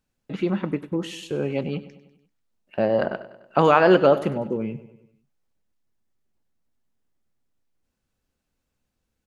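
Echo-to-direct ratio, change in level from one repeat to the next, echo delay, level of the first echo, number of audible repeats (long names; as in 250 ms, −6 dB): −14.5 dB, −5.5 dB, 98 ms, −16.0 dB, 4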